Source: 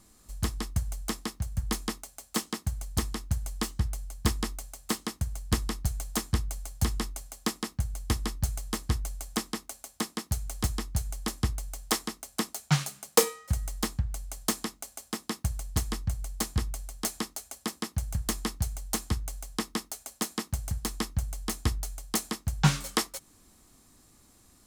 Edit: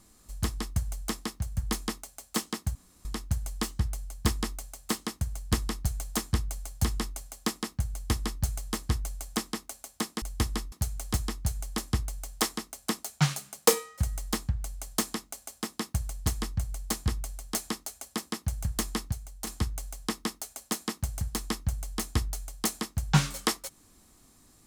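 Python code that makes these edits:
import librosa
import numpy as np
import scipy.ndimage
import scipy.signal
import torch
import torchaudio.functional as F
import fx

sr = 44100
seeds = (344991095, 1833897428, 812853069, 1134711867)

y = fx.edit(x, sr, fx.room_tone_fill(start_s=2.75, length_s=0.3),
    fx.duplicate(start_s=7.92, length_s=0.5, to_s=10.22),
    fx.clip_gain(start_s=18.62, length_s=0.35, db=-7.0), tone=tone)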